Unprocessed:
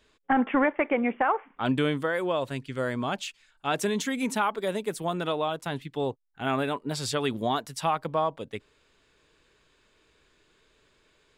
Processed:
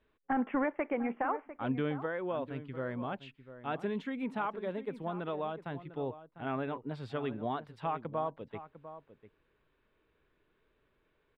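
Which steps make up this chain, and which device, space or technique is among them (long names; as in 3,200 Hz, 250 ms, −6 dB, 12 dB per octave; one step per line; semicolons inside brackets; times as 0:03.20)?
shout across a valley (high-frequency loss of the air 480 metres; slap from a distant wall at 120 metres, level −13 dB)
level −6.5 dB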